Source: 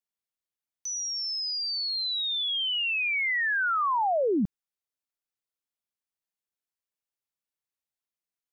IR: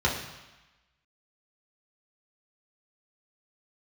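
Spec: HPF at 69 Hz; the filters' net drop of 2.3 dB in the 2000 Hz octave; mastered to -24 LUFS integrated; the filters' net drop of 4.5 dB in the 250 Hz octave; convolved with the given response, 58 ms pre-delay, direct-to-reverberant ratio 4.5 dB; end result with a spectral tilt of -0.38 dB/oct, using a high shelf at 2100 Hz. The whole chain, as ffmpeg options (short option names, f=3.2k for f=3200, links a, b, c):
-filter_complex "[0:a]highpass=69,equalizer=f=250:t=o:g=-6,equalizer=f=2k:t=o:g=-6.5,highshelf=f=2.1k:g=6,asplit=2[a][b];[1:a]atrim=start_sample=2205,adelay=58[c];[b][c]afir=irnorm=-1:irlink=0,volume=-17.5dB[d];[a][d]amix=inputs=2:normalize=0"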